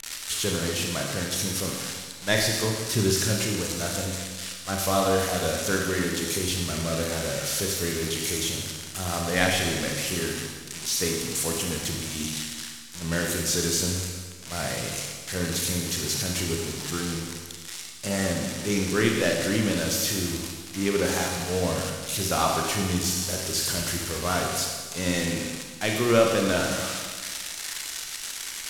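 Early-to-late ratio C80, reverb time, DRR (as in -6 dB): 4.0 dB, 1.6 s, 0.0 dB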